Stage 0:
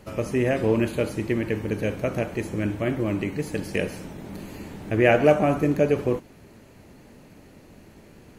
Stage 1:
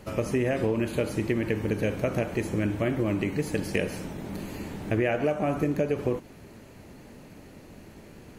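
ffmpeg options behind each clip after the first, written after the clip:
-af "acompressor=threshold=0.0708:ratio=12,volume=1.19"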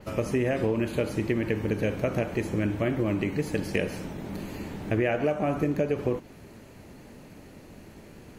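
-af "adynamicequalizer=threshold=0.00112:dfrequency=9800:dqfactor=0.86:tfrequency=9800:tqfactor=0.86:attack=5:release=100:ratio=0.375:range=2:mode=cutabove:tftype=bell"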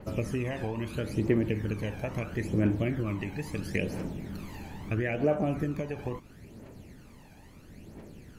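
-af "aphaser=in_gain=1:out_gain=1:delay=1.3:decay=0.61:speed=0.75:type=triangular,volume=0.501"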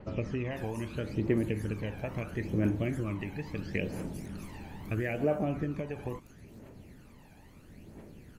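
-filter_complex "[0:a]acrossover=split=5500[s0][s1];[s1]adelay=500[s2];[s0][s2]amix=inputs=2:normalize=0,volume=0.75"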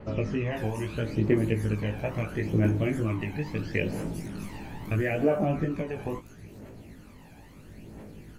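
-af "flanger=delay=17.5:depth=2.3:speed=1.9,volume=2.51"

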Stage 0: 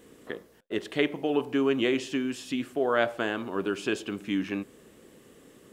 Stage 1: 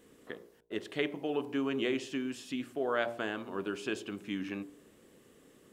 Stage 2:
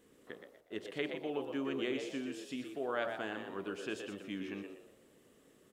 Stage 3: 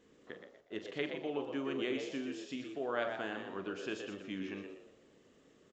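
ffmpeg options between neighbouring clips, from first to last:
-af "bandreject=f=58.44:t=h:w=4,bandreject=f=116.88:t=h:w=4,bandreject=f=175.32:t=h:w=4,bandreject=f=233.76:t=h:w=4,bandreject=f=292.2:t=h:w=4,bandreject=f=350.64:t=h:w=4,bandreject=f=409.08:t=h:w=4,bandreject=f=467.52:t=h:w=4,bandreject=f=525.96:t=h:w=4,bandreject=f=584.4:t=h:w=4,bandreject=f=642.84:t=h:w=4,bandreject=f=701.28:t=h:w=4,bandreject=f=759.72:t=h:w=4,bandreject=f=818.16:t=h:w=4,bandreject=f=876.6:t=h:w=4,bandreject=f=935.04:t=h:w=4,bandreject=f=993.48:t=h:w=4,bandreject=f=1051.92:t=h:w=4,volume=0.501"
-filter_complex "[0:a]asplit=5[s0][s1][s2][s3][s4];[s1]adelay=121,afreqshift=78,volume=0.447[s5];[s2]adelay=242,afreqshift=156,volume=0.148[s6];[s3]adelay=363,afreqshift=234,volume=0.0484[s7];[s4]adelay=484,afreqshift=312,volume=0.016[s8];[s0][s5][s6][s7][s8]amix=inputs=5:normalize=0,volume=0.562"
-filter_complex "[0:a]asplit=2[s0][s1];[s1]adelay=42,volume=0.266[s2];[s0][s2]amix=inputs=2:normalize=0,aresample=16000,aresample=44100"

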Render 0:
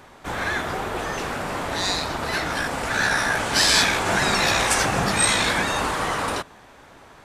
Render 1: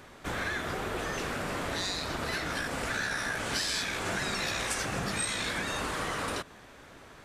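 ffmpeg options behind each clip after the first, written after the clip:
-af "equalizer=f=860:w=2:g=-6,acompressor=threshold=0.0398:ratio=5,volume=0.794"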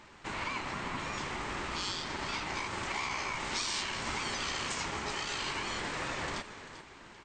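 -filter_complex "[0:a]asplit=5[s0][s1][s2][s3][s4];[s1]adelay=391,afreqshift=-94,volume=0.251[s5];[s2]adelay=782,afreqshift=-188,volume=0.1[s6];[s3]adelay=1173,afreqshift=-282,volume=0.0403[s7];[s4]adelay=1564,afreqshift=-376,volume=0.016[s8];[s0][s5][s6][s7][s8]amix=inputs=5:normalize=0,afftfilt=real='re*between(b*sr/4096,190,8100)':imag='im*between(b*sr/4096,190,8100)':win_size=4096:overlap=0.75,aeval=exprs='val(0)*sin(2*PI*620*n/s)':c=same"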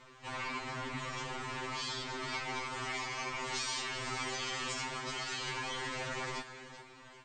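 -af "afftfilt=real='re*2.45*eq(mod(b,6),0)':imag='im*2.45*eq(mod(b,6),0)':win_size=2048:overlap=0.75"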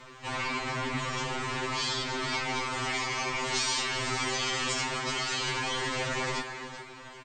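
-filter_complex "[0:a]asplit=2[s0][s1];[s1]adelay=270,highpass=300,lowpass=3400,asoftclip=type=hard:threshold=0.0237,volume=0.251[s2];[s0][s2]amix=inputs=2:normalize=0,acrossover=split=610|2400[s3][s4][s5];[s4]asoftclip=type=tanh:threshold=0.0119[s6];[s3][s6][s5]amix=inputs=3:normalize=0,volume=2.51"

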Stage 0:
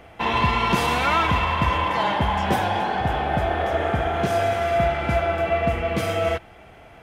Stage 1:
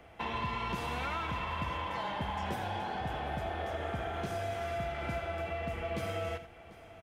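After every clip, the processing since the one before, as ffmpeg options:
-filter_complex "[0:a]acrossover=split=120|3300[s0][s1][s2];[s0]acompressor=threshold=0.0224:ratio=4[s3];[s1]acompressor=threshold=0.0501:ratio=4[s4];[s2]acompressor=threshold=0.00708:ratio=4[s5];[s3][s4][s5]amix=inputs=3:normalize=0,asplit=2[s6][s7];[s7]aecho=0:1:84|743:0.251|0.119[s8];[s6][s8]amix=inputs=2:normalize=0,volume=0.355"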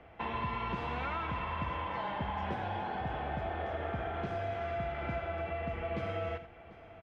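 -af "lowpass=2700"

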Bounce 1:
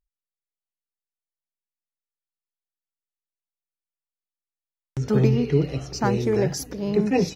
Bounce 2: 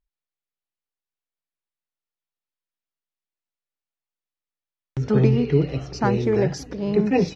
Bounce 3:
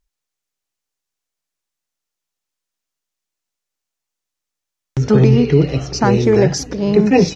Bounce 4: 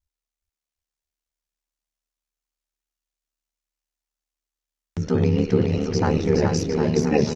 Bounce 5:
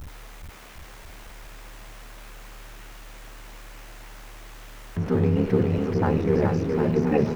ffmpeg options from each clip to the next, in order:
-af "lowpass=4300,volume=1.19"
-af "equalizer=f=6400:t=o:w=0.89:g=7,alimiter=level_in=2.82:limit=0.891:release=50:level=0:latency=1,volume=0.891"
-filter_complex "[0:a]aeval=exprs='val(0)*sin(2*PI*37*n/s)':c=same,asplit=2[s0][s1];[s1]aecho=0:1:420|756|1025|1240|1412:0.631|0.398|0.251|0.158|0.1[s2];[s0][s2]amix=inputs=2:normalize=0,volume=0.501"
-filter_complex "[0:a]aeval=exprs='val(0)+0.5*0.0447*sgn(val(0))':c=same,acrossover=split=2600[s0][s1];[s1]acompressor=threshold=0.00316:ratio=4:attack=1:release=60[s2];[s0][s2]amix=inputs=2:normalize=0,volume=0.708"

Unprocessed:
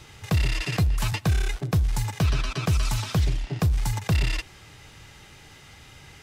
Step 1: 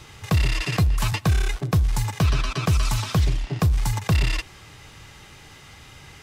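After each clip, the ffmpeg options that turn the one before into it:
-af "equalizer=f=1100:w=6.4:g=4.5,volume=1.33"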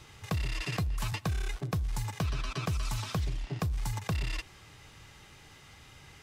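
-af "acompressor=threshold=0.1:ratio=6,volume=0.398"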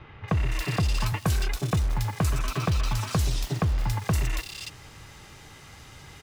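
-filter_complex "[0:a]acrossover=split=1500[s0][s1];[s0]acrusher=bits=4:mode=log:mix=0:aa=0.000001[s2];[s2][s1]amix=inputs=2:normalize=0,acrossover=split=2800[s3][s4];[s4]adelay=280[s5];[s3][s5]amix=inputs=2:normalize=0,volume=2.24"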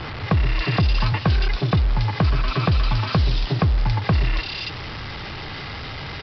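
-af "aeval=exprs='val(0)+0.5*0.0211*sgn(val(0))':c=same,aresample=11025,acrusher=bits=6:mix=0:aa=0.000001,aresample=44100,volume=1.78"

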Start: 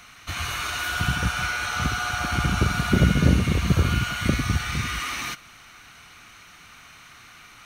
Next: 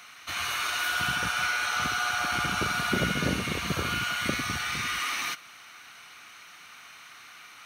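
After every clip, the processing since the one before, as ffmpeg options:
-af "highpass=f=570:p=1,equalizer=f=7200:w=5.4:g=-4.5"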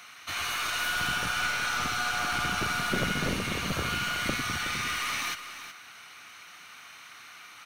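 -af "aeval=exprs='clip(val(0),-1,0.0335)':c=same,aecho=1:1:369:0.266"

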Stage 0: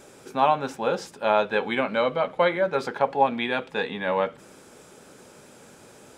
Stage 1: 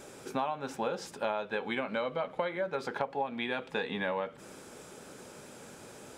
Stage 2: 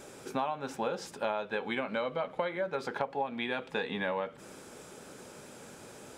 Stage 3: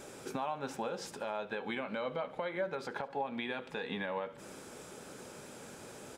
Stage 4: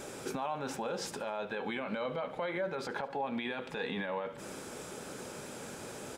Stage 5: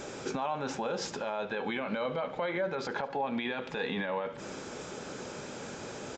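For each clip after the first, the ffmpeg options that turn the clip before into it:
-af "acompressor=threshold=0.0355:ratio=12"
-af anull
-af "alimiter=level_in=1.19:limit=0.0631:level=0:latency=1:release=176,volume=0.841,aecho=1:1:71|142|213|284:0.0944|0.0529|0.0296|0.0166"
-af "alimiter=level_in=2.37:limit=0.0631:level=0:latency=1:release=20,volume=0.422,volume=1.78"
-af "aresample=16000,aresample=44100,volume=1.41"

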